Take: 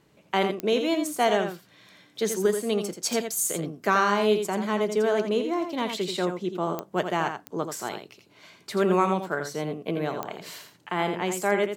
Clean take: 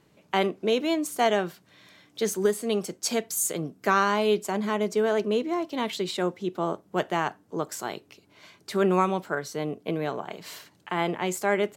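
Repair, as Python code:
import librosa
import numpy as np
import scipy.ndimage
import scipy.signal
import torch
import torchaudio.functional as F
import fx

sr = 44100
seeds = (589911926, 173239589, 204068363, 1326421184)

y = fx.fix_declick_ar(x, sr, threshold=10.0)
y = fx.fix_echo_inverse(y, sr, delay_ms=84, level_db=-7.5)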